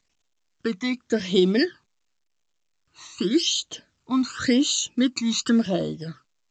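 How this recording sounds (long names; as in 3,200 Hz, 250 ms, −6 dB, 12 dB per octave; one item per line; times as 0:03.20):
phaser sweep stages 12, 0.9 Hz, lowest notch 500–1,800 Hz
A-law companding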